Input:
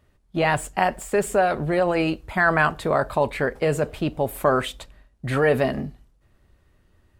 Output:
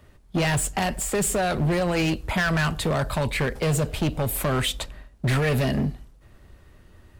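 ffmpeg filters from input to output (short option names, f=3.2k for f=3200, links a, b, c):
-filter_complex "[0:a]acrossover=split=190|2600[a][b][c];[b]acompressor=threshold=-31dB:ratio=6[d];[a][d][c]amix=inputs=3:normalize=0,asoftclip=type=hard:threshold=-28dB,volume=9dB"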